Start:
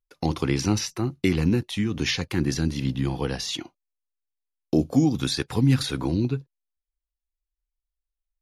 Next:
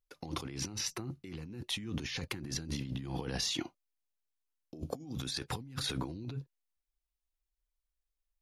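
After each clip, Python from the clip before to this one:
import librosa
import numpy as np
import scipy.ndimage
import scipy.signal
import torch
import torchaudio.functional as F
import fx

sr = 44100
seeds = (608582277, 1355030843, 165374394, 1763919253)

y = fx.over_compress(x, sr, threshold_db=-32.0, ratio=-1.0)
y = y * librosa.db_to_amplitude(-8.0)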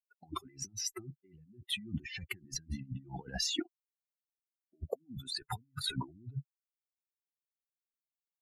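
y = fx.bin_expand(x, sr, power=3.0)
y = y * librosa.db_to_amplitude(5.5)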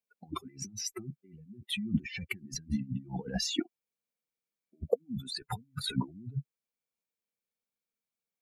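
y = fx.small_body(x, sr, hz=(210.0, 470.0, 2300.0), ring_ms=35, db=12)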